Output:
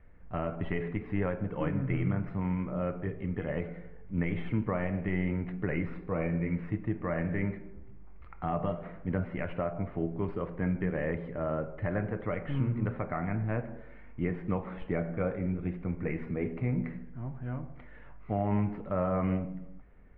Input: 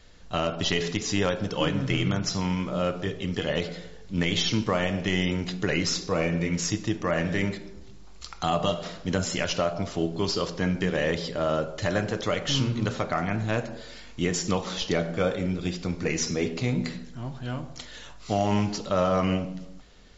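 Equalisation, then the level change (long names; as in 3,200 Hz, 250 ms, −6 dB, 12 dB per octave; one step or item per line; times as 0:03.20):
elliptic low-pass filter 2,200 Hz, stop band 70 dB
low-shelf EQ 250 Hz +8 dB
−8.0 dB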